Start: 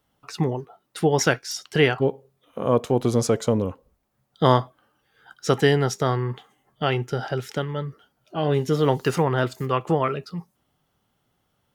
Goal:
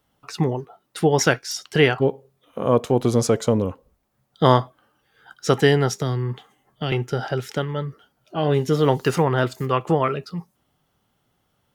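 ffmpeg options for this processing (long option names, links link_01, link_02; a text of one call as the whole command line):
ffmpeg -i in.wav -filter_complex "[0:a]asettb=1/sr,asplit=3[link_01][link_02][link_03];[link_01]atrim=end=5.924[link_04];[link_02]atrim=start=5.92:end=6.92,asetpts=PTS-STARTPTS,afade=type=in:duration=0.004:curve=qsin,afade=type=out:start_time=0.996:duration=0.004:curve=qsin,acrossover=split=340|3000[link_05][link_06][link_07];[link_06]acompressor=threshold=-37dB:ratio=2.5[link_08];[link_05][link_08][link_07]amix=inputs=3:normalize=0[link_09];[link_03]atrim=start=6.916[link_10];[link_04][link_09]acrossfade=duration=0.004:curve1=hsin:curve2=qsin[link_11];[link_11][link_10]acrossfade=duration=0.004:curve1=qsin:curve2=hsin,volume=2dB" out.wav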